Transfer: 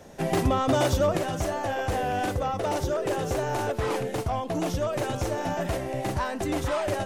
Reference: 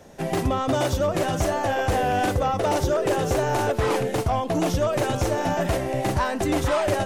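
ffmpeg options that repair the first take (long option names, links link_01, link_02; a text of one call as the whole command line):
ffmpeg -i in.wav -af "asetnsamples=nb_out_samples=441:pad=0,asendcmd='1.17 volume volume 5dB',volume=0dB" out.wav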